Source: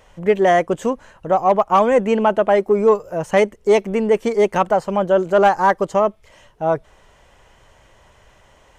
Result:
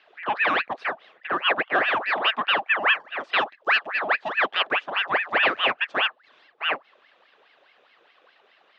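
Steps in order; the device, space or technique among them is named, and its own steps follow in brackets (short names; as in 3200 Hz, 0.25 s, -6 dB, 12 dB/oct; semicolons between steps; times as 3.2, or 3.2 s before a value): voice changer toy (ring modulator with a swept carrier 1300 Hz, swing 70%, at 4.8 Hz; speaker cabinet 560–3700 Hz, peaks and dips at 950 Hz -7 dB, 1400 Hz -5 dB, 2200 Hz -7 dB)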